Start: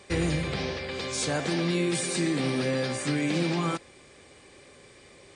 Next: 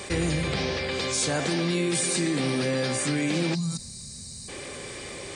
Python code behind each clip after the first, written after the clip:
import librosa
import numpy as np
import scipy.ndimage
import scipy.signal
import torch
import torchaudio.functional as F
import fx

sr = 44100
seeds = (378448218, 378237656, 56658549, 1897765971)

y = fx.spec_box(x, sr, start_s=3.55, length_s=0.94, low_hz=240.0, high_hz=3700.0, gain_db=-23)
y = fx.high_shelf(y, sr, hz=6500.0, db=6.5)
y = fx.env_flatten(y, sr, amount_pct=50)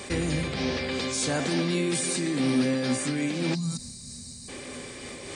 y = fx.peak_eq(x, sr, hz=250.0, db=10.0, octaves=0.23)
y = fx.am_noise(y, sr, seeds[0], hz=5.7, depth_pct=50)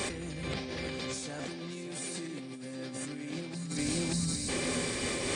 y = fx.echo_feedback(x, sr, ms=583, feedback_pct=24, wet_db=-9)
y = fx.over_compress(y, sr, threshold_db=-36.0, ratio=-1.0)
y = y * librosa.db_to_amplitude(-1.0)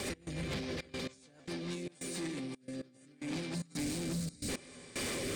y = fx.step_gate(x, sr, bpm=112, pattern='x.xxxx.x...xx', floor_db=-24.0, edge_ms=4.5)
y = 10.0 ** (-37.0 / 20.0) * np.tanh(y / 10.0 ** (-37.0 / 20.0))
y = fx.rotary_switch(y, sr, hz=7.0, then_hz=0.75, switch_at_s=1.44)
y = y * librosa.db_to_amplitude(5.0)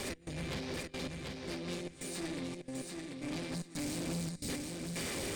y = fx.echo_feedback(x, sr, ms=738, feedback_pct=23, wet_db=-4.5)
y = fx.tube_stage(y, sr, drive_db=36.0, bias=0.7)
y = y * librosa.db_to_amplitude(3.0)